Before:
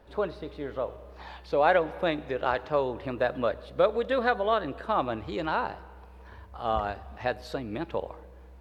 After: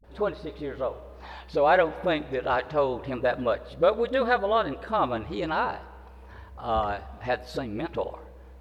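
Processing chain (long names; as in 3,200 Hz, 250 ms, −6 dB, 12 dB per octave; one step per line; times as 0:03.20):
all-pass dispersion highs, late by 41 ms, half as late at 310 Hz
level +2 dB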